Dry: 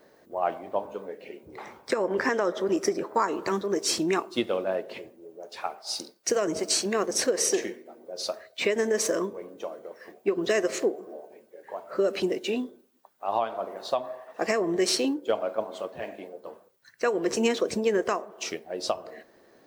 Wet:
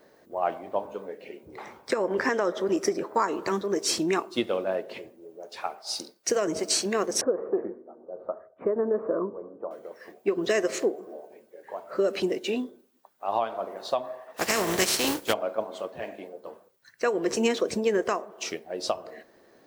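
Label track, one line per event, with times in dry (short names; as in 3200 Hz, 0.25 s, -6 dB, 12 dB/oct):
7.210000	9.710000	elliptic low-pass 1300 Hz, stop band 80 dB
14.360000	15.320000	spectral contrast lowered exponent 0.46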